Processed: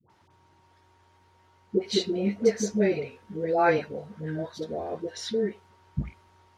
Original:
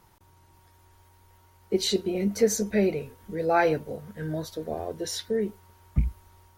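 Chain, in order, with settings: BPF 120–5000 Hz; dispersion highs, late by 98 ms, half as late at 630 Hz

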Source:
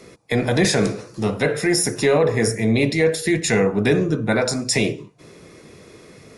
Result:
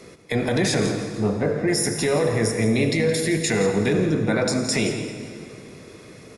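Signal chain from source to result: 1.21–1.68 Bessel low-pass 950 Hz, order 2; limiter -13.5 dBFS, peak gain reduction 7 dB; echo 0.169 s -13 dB; on a send at -8 dB: reverb RT60 2.4 s, pre-delay 68 ms

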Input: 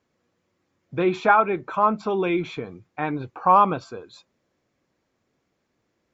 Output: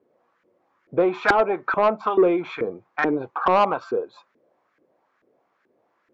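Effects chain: in parallel at +0.5 dB: compressor, threshold -25 dBFS, peak gain reduction 13.5 dB; on the sum: LFO band-pass saw up 2.3 Hz 360–1700 Hz; soft clip -18.5 dBFS, distortion -13 dB; gain +8.5 dB

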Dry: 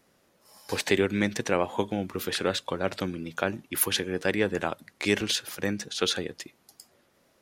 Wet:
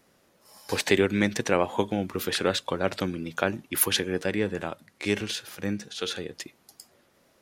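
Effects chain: 4.24–6.33 harmonic-percussive split percussive -9 dB; gain +2 dB

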